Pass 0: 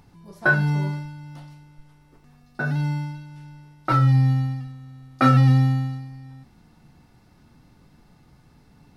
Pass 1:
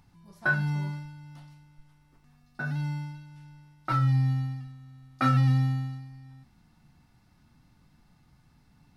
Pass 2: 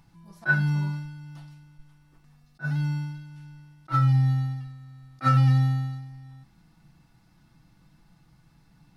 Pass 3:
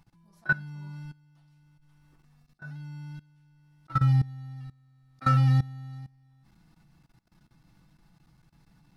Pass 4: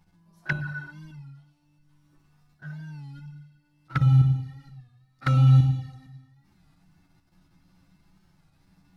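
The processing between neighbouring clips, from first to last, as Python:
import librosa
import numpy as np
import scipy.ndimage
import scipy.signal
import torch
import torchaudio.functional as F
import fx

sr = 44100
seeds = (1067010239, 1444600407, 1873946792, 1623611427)

y1 = fx.peak_eq(x, sr, hz=440.0, db=-8.5, octaves=1.1)
y1 = y1 * librosa.db_to_amplitude(-6.0)
y2 = y1 + 0.46 * np.pad(y1, (int(6.1 * sr / 1000.0), 0))[:len(y1)]
y2 = fx.attack_slew(y2, sr, db_per_s=440.0)
y2 = y2 * librosa.db_to_amplitude(1.5)
y3 = fx.level_steps(y2, sr, step_db=20)
y4 = fx.rev_gated(y3, sr, seeds[0], gate_ms=420, shape='falling', drr_db=2.0)
y4 = fx.env_flanger(y4, sr, rest_ms=12.0, full_db=-21.0)
y4 = fx.record_warp(y4, sr, rpm=33.33, depth_cents=100.0)
y4 = y4 * librosa.db_to_amplitude(1.5)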